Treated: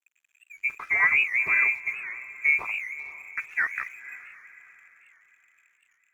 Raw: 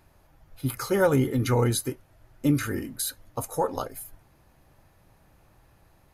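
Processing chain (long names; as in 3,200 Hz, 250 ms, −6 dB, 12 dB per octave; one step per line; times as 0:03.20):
adaptive Wiener filter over 25 samples
voice inversion scrambler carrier 2,500 Hz
dead-zone distortion −54 dBFS
feedback delay with all-pass diffusion 500 ms, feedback 41%, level −14.5 dB
wow of a warped record 78 rpm, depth 160 cents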